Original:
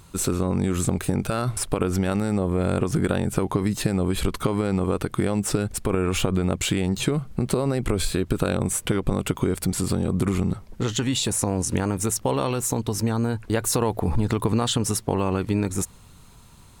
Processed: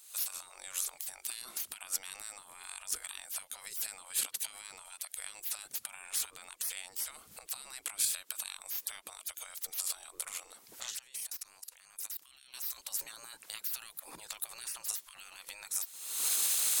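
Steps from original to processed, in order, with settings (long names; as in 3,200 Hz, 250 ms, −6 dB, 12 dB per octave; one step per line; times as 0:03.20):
camcorder AGC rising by 58 dB per second
gate on every frequency bin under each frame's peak −20 dB weak
first-order pre-emphasis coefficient 0.9
0:10.97–0:12.54: output level in coarse steps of 20 dB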